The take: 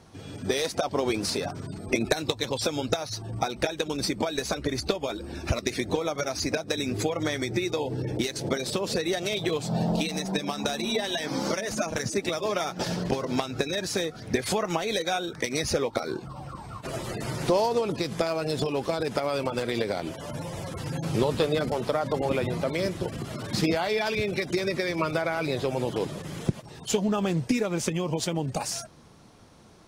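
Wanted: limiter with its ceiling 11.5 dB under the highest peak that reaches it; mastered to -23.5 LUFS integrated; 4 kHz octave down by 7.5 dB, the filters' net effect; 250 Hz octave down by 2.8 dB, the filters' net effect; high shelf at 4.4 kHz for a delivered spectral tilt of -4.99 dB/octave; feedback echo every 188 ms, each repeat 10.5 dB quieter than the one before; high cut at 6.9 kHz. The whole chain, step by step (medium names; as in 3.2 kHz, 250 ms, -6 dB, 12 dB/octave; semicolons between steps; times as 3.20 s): low-pass 6.9 kHz; peaking EQ 250 Hz -4 dB; peaking EQ 4 kHz -5 dB; treble shelf 4.4 kHz -6.5 dB; peak limiter -23 dBFS; feedback delay 188 ms, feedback 30%, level -10.5 dB; trim +10 dB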